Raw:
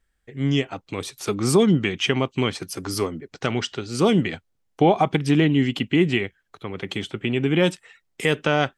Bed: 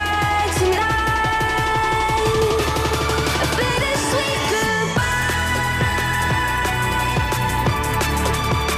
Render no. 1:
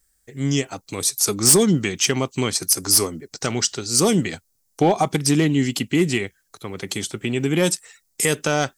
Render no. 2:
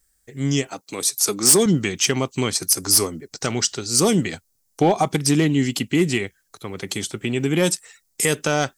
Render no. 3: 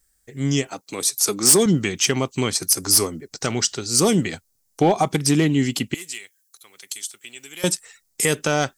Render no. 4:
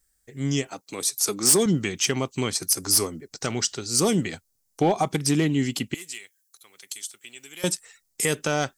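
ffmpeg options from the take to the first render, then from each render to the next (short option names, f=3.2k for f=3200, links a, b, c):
-af "aexciter=amount=8.1:drive=3.9:freq=4.5k,asoftclip=type=hard:threshold=-8.5dB"
-filter_complex "[0:a]asettb=1/sr,asplit=3[a][b][c];[a]atrim=end=0.694[d];[b]atrim=start=0.69:end=1.66,asetpts=PTS-STARTPTS,afade=t=in:d=0.004:c=qsin,afade=t=out:st=0.966:d=0.004:c=qsin,highpass=200[e];[c]atrim=start=1.656[f];[d][e]acrossfade=d=0.004:c1=hsin:c2=qsin[g];[g][f]acrossfade=d=0.004:c1=qsin:c2=hsin"
-filter_complex "[0:a]asettb=1/sr,asplit=3[a][b][c];[a]atrim=end=5.944[d];[b]atrim=start=5.94:end=7.64,asetpts=PTS-STARTPTS,afade=t=in:d=0.004:c=qsin,afade=t=out:st=1.696:d=0.004:c=qsin,aderivative[e];[c]atrim=start=7.636[f];[d][e]acrossfade=d=0.004:c1=hsin:c2=qsin[g];[g][f]acrossfade=d=0.004:c1=qsin:c2=hsin"
-af "volume=-4dB"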